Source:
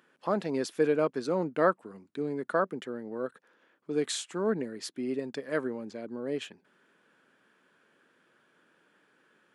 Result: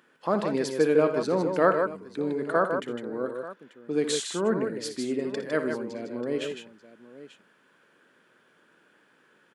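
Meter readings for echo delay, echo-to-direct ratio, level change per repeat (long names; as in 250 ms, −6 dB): 58 ms, −4.0 dB, repeats not evenly spaced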